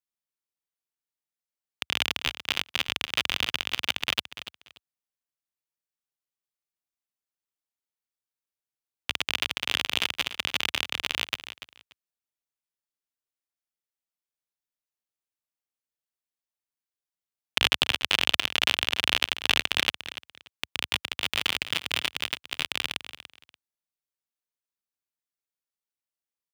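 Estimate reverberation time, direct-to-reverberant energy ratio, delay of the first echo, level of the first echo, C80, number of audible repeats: no reverb, no reverb, 290 ms, -13.0 dB, no reverb, 2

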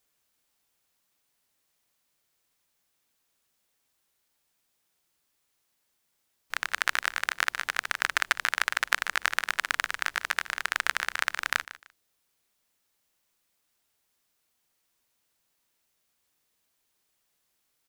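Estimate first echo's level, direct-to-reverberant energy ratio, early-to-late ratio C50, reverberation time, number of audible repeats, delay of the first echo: -16.0 dB, no reverb, no reverb, no reverb, 2, 151 ms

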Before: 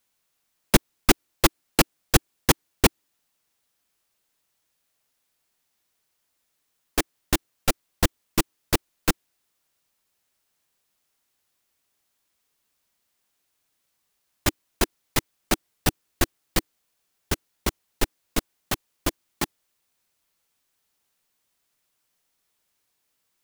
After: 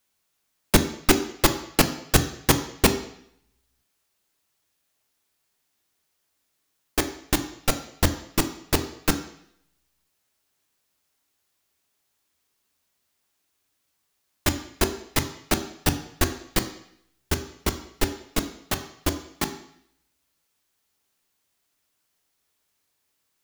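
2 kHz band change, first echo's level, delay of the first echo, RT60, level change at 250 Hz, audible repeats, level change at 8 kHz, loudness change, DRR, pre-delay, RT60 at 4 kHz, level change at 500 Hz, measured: +0.5 dB, no echo, no echo, 0.65 s, +2.0 dB, no echo, +0.5 dB, +1.0 dB, 7.5 dB, 3 ms, 0.70 s, +1.5 dB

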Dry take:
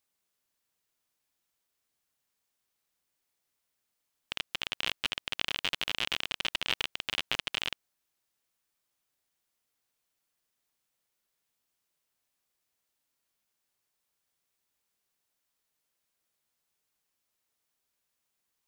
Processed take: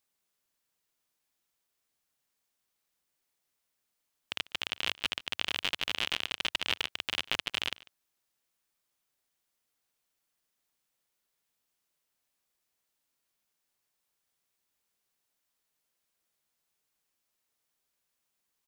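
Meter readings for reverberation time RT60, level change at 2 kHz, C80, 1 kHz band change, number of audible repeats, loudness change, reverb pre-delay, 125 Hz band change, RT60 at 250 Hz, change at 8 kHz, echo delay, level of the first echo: no reverb, 0.0 dB, no reverb, 0.0 dB, 1, 0.0 dB, no reverb, -1.0 dB, no reverb, 0.0 dB, 146 ms, -21.5 dB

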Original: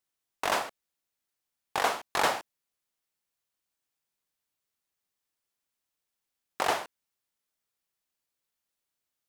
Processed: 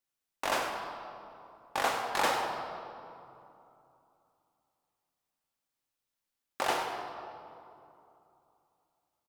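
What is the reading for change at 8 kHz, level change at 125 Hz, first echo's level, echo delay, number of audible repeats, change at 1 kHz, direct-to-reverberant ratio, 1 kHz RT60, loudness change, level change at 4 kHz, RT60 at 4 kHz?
-2.5 dB, -0.5 dB, -12.5 dB, 98 ms, 1, -1.0 dB, 1.5 dB, 2.8 s, -3.5 dB, -2.0 dB, 1.6 s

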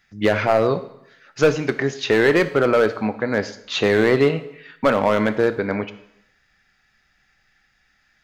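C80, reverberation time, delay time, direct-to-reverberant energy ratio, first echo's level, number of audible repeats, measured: 16.5 dB, 0.75 s, no echo, 11.0 dB, no echo, no echo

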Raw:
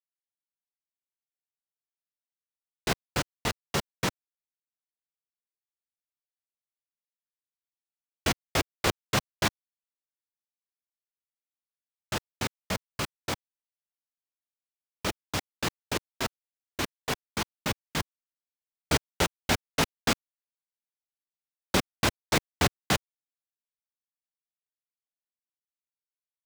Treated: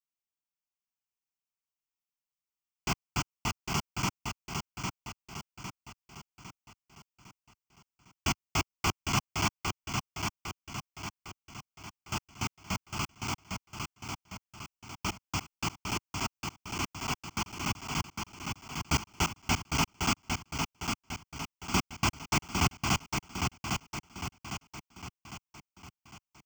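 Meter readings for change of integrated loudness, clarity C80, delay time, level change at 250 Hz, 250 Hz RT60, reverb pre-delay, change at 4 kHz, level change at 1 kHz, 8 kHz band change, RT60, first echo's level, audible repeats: -3.5 dB, no reverb, 805 ms, -1.0 dB, no reverb, no reverb, -2.0 dB, 0.0 dB, 0.0 dB, no reverb, -4.5 dB, 5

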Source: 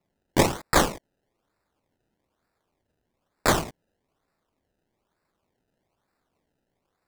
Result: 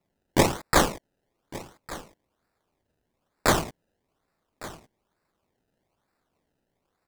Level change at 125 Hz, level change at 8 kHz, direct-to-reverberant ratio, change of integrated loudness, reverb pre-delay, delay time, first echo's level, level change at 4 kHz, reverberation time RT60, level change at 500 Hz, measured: 0.0 dB, 0.0 dB, no reverb, 0.0 dB, no reverb, 1157 ms, -18.0 dB, 0.0 dB, no reverb, 0.0 dB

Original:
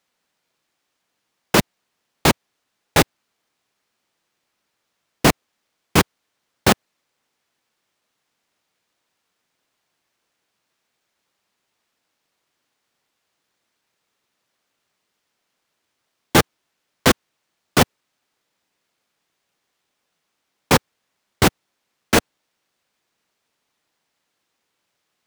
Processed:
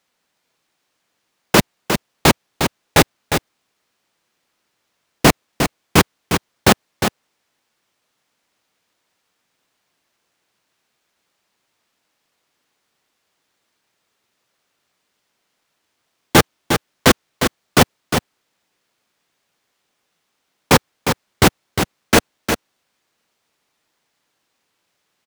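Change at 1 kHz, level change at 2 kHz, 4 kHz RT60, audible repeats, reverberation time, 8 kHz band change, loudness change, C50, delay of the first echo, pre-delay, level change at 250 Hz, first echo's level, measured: +4.0 dB, +4.0 dB, no reverb, 1, no reverb, +4.0 dB, +2.0 dB, no reverb, 356 ms, no reverb, +4.0 dB, -7.0 dB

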